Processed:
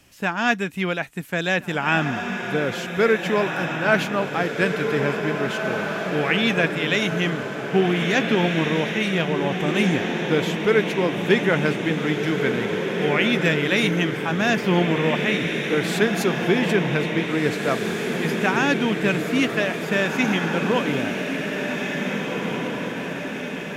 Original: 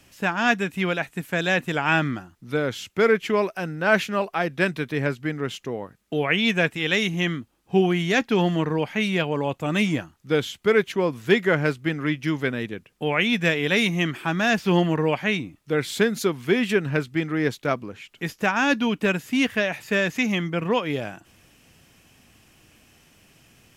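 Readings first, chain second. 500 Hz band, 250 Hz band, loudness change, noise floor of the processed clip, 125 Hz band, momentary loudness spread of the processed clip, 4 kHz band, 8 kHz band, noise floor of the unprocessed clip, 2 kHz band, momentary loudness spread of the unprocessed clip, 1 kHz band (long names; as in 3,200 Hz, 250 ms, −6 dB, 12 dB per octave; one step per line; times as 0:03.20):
+2.0 dB, +2.0 dB, +1.5 dB, −30 dBFS, +2.0 dB, 6 LU, +2.0 dB, +2.0 dB, −60 dBFS, +2.0 dB, 8 LU, +2.0 dB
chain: feedback delay with all-pass diffusion 1,858 ms, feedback 59%, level −4 dB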